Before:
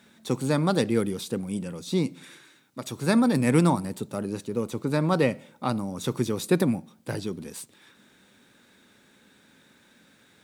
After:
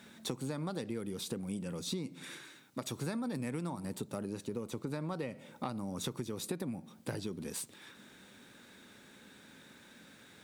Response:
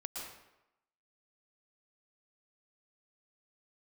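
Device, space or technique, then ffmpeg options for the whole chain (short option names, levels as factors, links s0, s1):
serial compression, leveller first: -af "acompressor=threshold=0.0631:ratio=2.5,acompressor=threshold=0.0141:ratio=6,volume=1.19"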